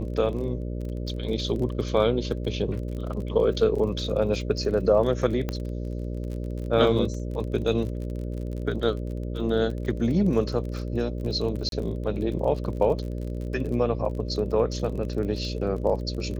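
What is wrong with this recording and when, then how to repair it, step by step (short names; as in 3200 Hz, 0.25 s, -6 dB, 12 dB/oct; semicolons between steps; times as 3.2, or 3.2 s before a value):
buzz 60 Hz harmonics 10 -31 dBFS
crackle 31/s -33 dBFS
5.49 pop -15 dBFS
11.69–11.72 gap 32 ms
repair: de-click; de-hum 60 Hz, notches 10; interpolate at 11.69, 32 ms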